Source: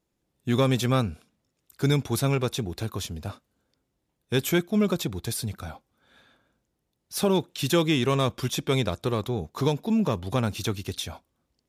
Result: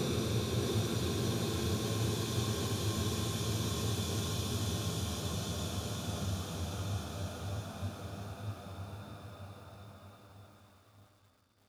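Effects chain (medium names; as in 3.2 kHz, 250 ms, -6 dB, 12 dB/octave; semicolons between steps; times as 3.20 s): Paulstretch 11×, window 1.00 s, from 2.71 s; bit-crushed delay 629 ms, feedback 35%, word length 10-bit, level -6.5 dB; trim -2.5 dB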